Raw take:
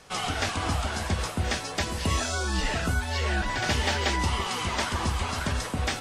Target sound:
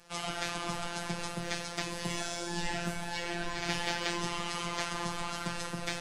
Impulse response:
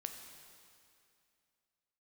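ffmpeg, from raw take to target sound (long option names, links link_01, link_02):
-filter_complex "[1:a]atrim=start_sample=2205[link_01];[0:a][link_01]afir=irnorm=-1:irlink=0,afftfilt=real='hypot(re,im)*cos(PI*b)':imag='0':win_size=1024:overlap=0.75"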